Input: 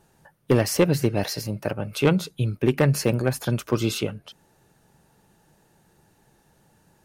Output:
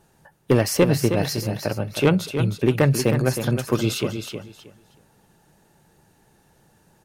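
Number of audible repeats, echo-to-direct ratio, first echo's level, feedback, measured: 2, −8.0 dB, −8.0 dB, 20%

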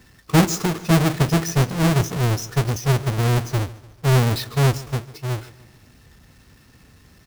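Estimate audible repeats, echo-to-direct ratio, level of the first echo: 3, −18.0 dB, −19.0 dB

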